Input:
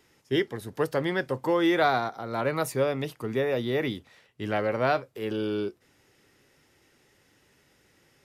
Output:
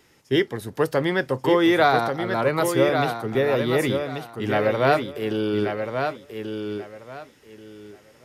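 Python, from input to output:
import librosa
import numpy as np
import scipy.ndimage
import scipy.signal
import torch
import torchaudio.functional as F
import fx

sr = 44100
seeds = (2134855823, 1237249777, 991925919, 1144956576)

y = fx.echo_feedback(x, sr, ms=1135, feedback_pct=22, wet_db=-6)
y = fx.band_widen(y, sr, depth_pct=40, at=(2.89, 3.35))
y = F.gain(torch.from_numpy(y), 5.0).numpy()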